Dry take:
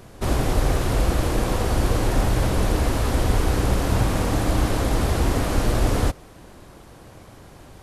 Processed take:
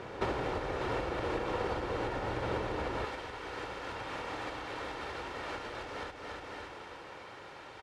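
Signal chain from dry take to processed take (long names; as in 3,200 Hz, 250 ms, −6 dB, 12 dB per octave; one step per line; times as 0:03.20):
low-pass filter 2,800 Hz 12 dB per octave
comb filter 2.2 ms, depth 35%
repeating echo 287 ms, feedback 45%, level −11 dB
downward compressor 8 to 1, threshold −29 dBFS, peak gain reduction 18 dB
high-pass filter 420 Hz 6 dB per octave, from 0:03.05 1,500 Hz
level +6.5 dB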